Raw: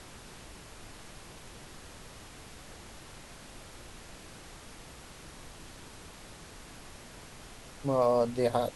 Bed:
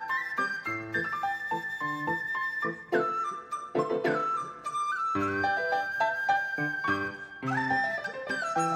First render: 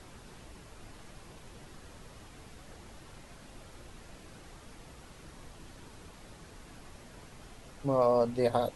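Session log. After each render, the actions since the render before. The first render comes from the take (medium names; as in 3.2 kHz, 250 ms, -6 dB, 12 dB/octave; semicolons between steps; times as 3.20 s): noise reduction 6 dB, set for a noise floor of -50 dBFS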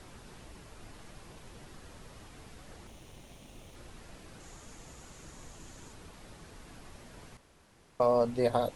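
2.87–3.76 s: comb filter that takes the minimum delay 0.32 ms; 4.40–5.93 s: peaking EQ 6.9 kHz +11 dB 0.34 oct; 7.37–8.00 s: room tone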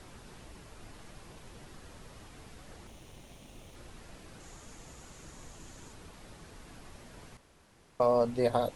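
no audible change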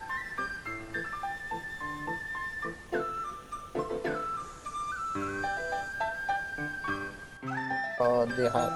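add bed -5 dB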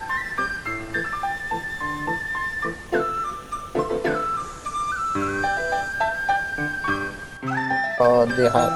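trim +9.5 dB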